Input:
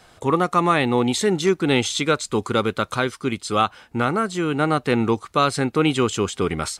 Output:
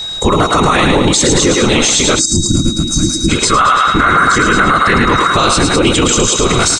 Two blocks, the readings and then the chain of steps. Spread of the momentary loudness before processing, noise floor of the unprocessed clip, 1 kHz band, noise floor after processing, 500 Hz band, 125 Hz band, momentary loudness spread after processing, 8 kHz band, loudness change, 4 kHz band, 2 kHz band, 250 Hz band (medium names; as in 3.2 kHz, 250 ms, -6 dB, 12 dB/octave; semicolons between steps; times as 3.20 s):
5 LU, -54 dBFS, +11.0 dB, -19 dBFS, +6.5 dB, +10.0 dB, 4 LU, +19.5 dB, +11.0 dB, +14.5 dB, +13.0 dB, +8.0 dB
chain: whisper effect; peaking EQ 6.9 kHz +11.5 dB 1.3 oct; delay 1084 ms -15 dB; time-frequency box 3.44–5.33 s, 980–2200 Hz +11 dB; on a send: thinning echo 108 ms, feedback 48%, high-pass 660 Hz, level -4.5 dB; on the sum: time-frequency box 2.19–3.29 s, 350–4400 Hz -26 dB; low-pass 9.1 kHz 24 dB/octave; bass shelf 63 Hz +10 dB; whistle 3.8 kHz -33 dBFS; loudness maximiser +14.5 dB; trim -1 dB